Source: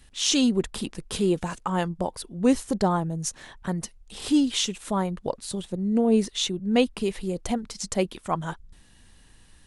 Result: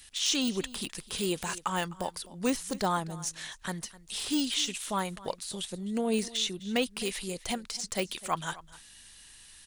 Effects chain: de-esser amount 100%; tilt shelf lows -10 dB, about 1.3 kHz; delay 256 ms -19 dB

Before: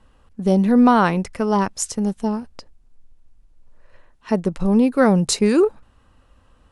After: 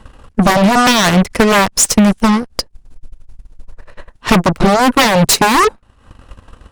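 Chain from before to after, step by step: sine folder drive 16 dB, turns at -2.5 dBFS; Chebyshev shaper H 8 -15 dB, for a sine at 0 dBFS; transient shaper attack +4 dB, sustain -10 dB; trim -4.5 dB

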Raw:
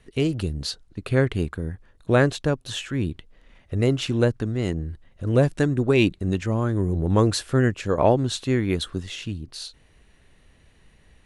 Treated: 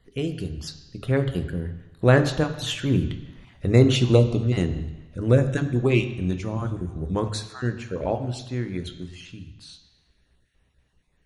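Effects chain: random holes in the spectrogram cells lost 22%; Doppler pass-by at 3.54 s, 11 m/s, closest 14 m; on a send: steep low-pass 6.8 kHz + reverberation RT60 1.1 s, pre-delay 3 ms, DRR 7 dB; on the sum: trim +3.5 dB

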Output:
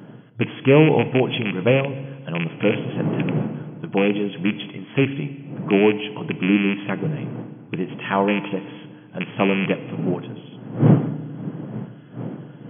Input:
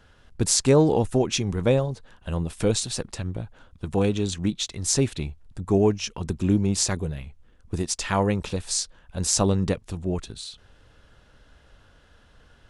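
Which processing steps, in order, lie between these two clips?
rattle on loud lows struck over -25 dBFS, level -16 dBFS; wind noise 200 Hz -30 dBFS; FFT band-pass 110–3400 Hz; FDN reverb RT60 1.5 s, low-frequency decay 1.25×, high-frequency decay 0.95×, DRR 12.5 dB; trim +3.5 dB

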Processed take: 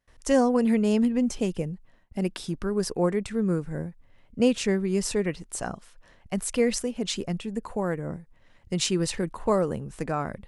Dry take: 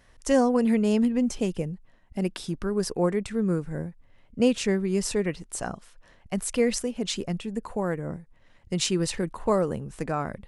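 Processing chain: gate with hold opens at -50 dBFS

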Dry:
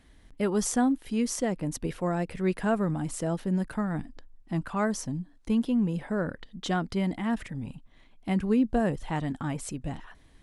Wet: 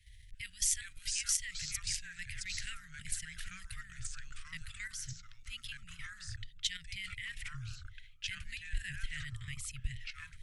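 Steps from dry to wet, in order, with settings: Chebyshev band-stop 120–1900 Hz, order 5; level held to a coarse grid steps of 12 dB; ever faster or slower copies 336 ms, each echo -3 st, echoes 2, each echo -6 dB; trim +6 dB

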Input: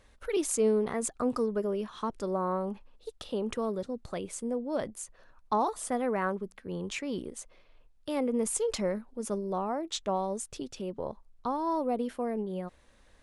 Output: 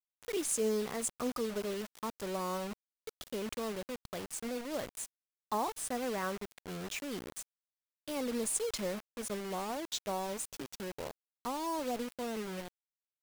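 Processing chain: treble shelf 3 kHz +6 dB; word length cut 6-bit, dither none; trim -6.5 dB

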